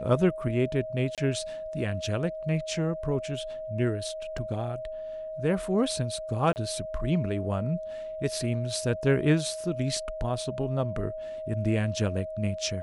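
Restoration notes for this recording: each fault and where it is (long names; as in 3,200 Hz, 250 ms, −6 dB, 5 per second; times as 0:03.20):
whistle 630 Hz −34 dBFS
0:01.15–0:01.18: drop-out 27 ms
0:04.38: drop-out 3.4 ms
0:06.53–0:06.56: drop-out 29 ms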